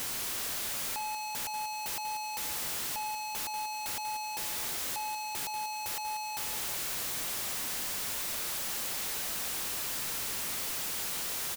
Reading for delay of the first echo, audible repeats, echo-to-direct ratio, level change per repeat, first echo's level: 189 ms, 2, −9.5 dB, −8.5 dB, −10.0 dB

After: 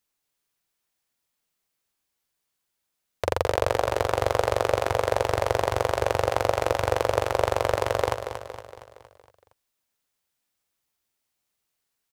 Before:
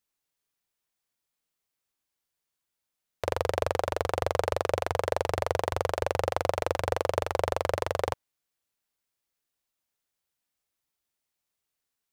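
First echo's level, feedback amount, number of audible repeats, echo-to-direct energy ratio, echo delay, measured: −9.0 dB, 52%, 5, −7.5 dB, 232 ms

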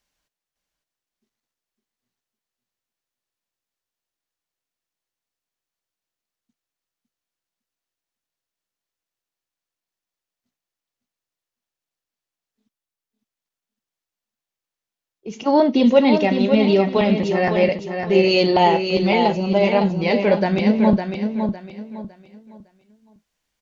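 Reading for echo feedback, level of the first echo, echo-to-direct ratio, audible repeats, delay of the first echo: 29%, −6.5 dB, −6.0 dB, 3, 557 ms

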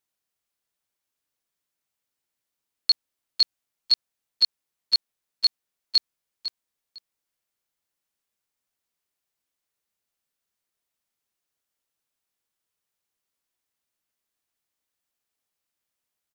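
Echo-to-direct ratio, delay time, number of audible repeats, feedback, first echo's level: −12.0 dB, 502 ms, 2, 19%, −12.0 dB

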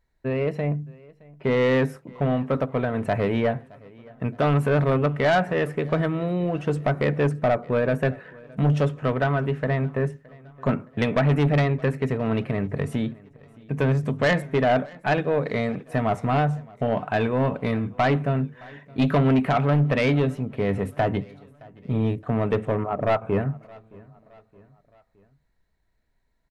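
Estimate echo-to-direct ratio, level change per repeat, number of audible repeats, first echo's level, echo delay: −23.0 dB, −6.0 dB, 2, −24.0 dB, 618 ms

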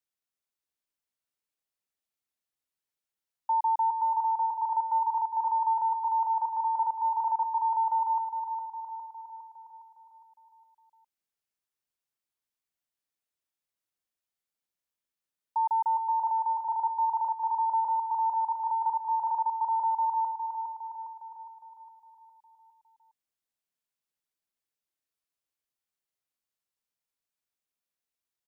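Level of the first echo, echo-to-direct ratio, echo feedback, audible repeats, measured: −6.5 dB, −5.0 dB, 54%, 6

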